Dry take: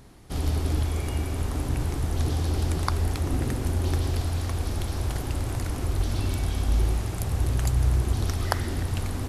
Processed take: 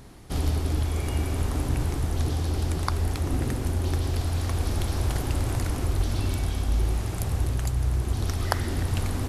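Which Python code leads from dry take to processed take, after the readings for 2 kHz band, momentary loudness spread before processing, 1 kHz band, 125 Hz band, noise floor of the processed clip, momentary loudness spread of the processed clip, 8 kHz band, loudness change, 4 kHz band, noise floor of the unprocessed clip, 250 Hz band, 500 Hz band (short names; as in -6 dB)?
+0.5 dB, 5 LU, 0.0 dB, 0.0 dB, -31 dBFS, 1 LU, +0.5 dB, 0.0 dB, +0.5 dB, -32 dBFS, +0.5 dB, +0.5 dB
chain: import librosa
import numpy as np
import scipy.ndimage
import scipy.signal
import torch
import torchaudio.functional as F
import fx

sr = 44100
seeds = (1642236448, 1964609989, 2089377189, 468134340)

y = fx.rider(x, sr, range_db=4, speed_s=0.5)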